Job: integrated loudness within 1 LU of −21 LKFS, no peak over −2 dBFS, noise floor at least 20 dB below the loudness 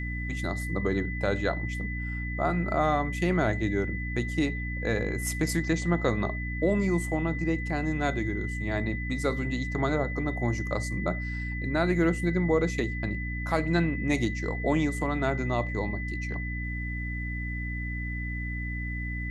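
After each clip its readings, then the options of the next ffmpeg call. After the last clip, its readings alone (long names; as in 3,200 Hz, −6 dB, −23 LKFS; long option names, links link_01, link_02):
mains hum 60 Hz; hum harmonics up to 300 Hz; level of the hum −31 dBFS; interfering tone 2,000 Hz; level of the tone −36 dBFS; integrated loudness −29.0 LKFS; sample peak −11.0 dBFS; target loudness −21.0 LKFS
→ -af "bandreject=frequency=60:width_type=h:width=6,bandreject=frequency=120:width_type=h:width=6,bandreject=frequency=180:width_type=h:width=6,bandreject=frequency=240:width_type=h:width=6,bandreject=frequency=300:width_type=h:width=6"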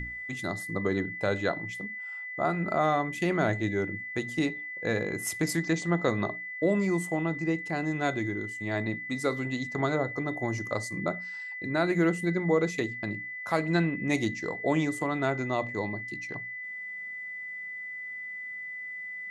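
mains hum none found; interfering tone 2,000 Hz; level of the tone −36 dBFS
→ -af "bandreject=frequency=2000:width=30"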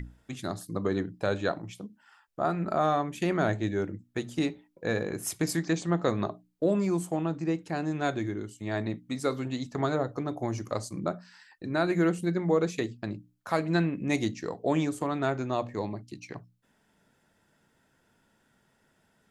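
interfering tone none found; integrated loudness −30.5 LKFS; sample peak −12.0 dBFS; target loudness −21.0 LKFS
→ -af "volume=9.5dB"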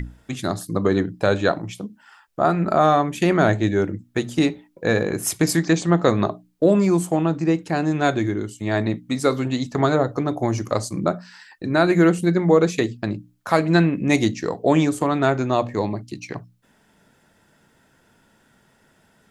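integrated loudness −21.0 LKFS; sample peak −2.5 dBFS; background noise floor −60 dBFS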